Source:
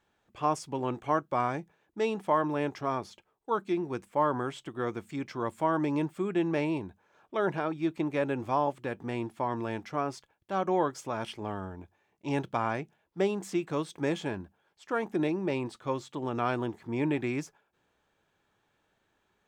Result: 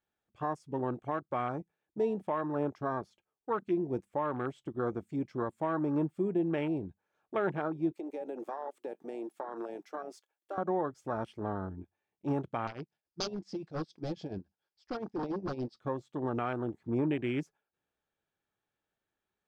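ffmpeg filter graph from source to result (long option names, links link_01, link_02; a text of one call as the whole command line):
ffmpeg -i in.wav -filter_complex "[0:a]asettb=1/sr,asplit=3[link_01][link_02][link_03];[link_01]atrim=end=7.934[link_04];[link_02]atrim=start=7.93:end=10.58,asetpts=PTS-STARTPTS,afade=type=in:duration=0.004:curve=qsin,afade=type=out:start_time=2.646:duration=0.004:curve=qsin,highpass=frequency=330:width=0.5412,highpass=frequency=330:width=1.3066,highshelf=frequency=6200:gain=11,acompressor=threshold=-34dB:ratio=10:attack=3.2:release=140:knee=1:detection=peak[link_05];[link_03]atrim=start=10.576[link_06];[link_04][link_05]acrossfade=duration=0.004:curve1=hsin:curve2=qsin[link_07];[link_07][link_06]acrossfade=duration=0.004:curve1=qsin:curve2=hsin,asettb=1/sr,asplit=3[link_08][link_09][link_10];[link_08]atrim=end=12.674[link_11];[link_09]atrim=start=12.67:end=15.8,asetpts=PTS-STARTPTS,afade=type=in:duration=0.004:curve=qsin,afade=type=out:start_time=3.126:duration=0.004:curve=qsin,tremolo=f=7.1:d=0.81,aeval=exprs='0.0299*(abs(mod(val(0)/0.0299+3,4)-2)-1)':channel_layout=same,lowpass=frequency=5000:width_type=q:width=6.9[link_12];[link_10]atrim=start=15.796[link_13];[link_11][link_12]acrossfade=duration=0.004:curve1=hsin:curve2=qsin[link_14];[link_14][link_13]acrossfade=duration=0.004:curve1=qsin:curve2=hsin,bandreject=frequency=990:width=12,afwtdn=0.0141,alimiter=limit=-23dB:level=0:latency=1:release=414,volume=1.5dB" out.wav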